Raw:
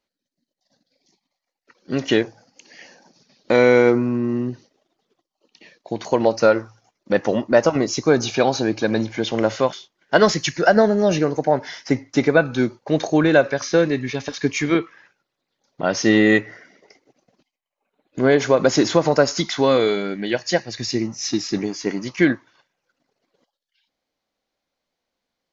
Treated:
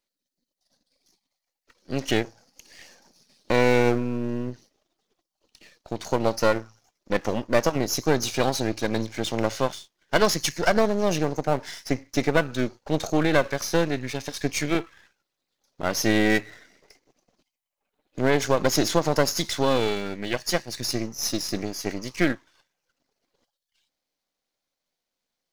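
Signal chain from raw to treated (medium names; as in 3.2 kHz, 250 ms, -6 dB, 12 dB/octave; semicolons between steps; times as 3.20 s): partial rectifier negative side -12 dB; treble shelf 4.4 kHz +10 dB; trim -3.5 dB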